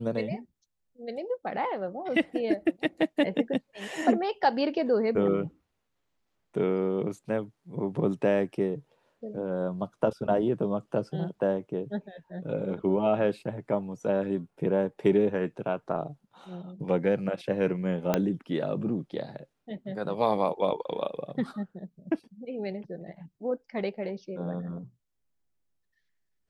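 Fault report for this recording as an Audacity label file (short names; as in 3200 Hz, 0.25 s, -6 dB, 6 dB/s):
18.140000	18.140000	pop -10 dBFS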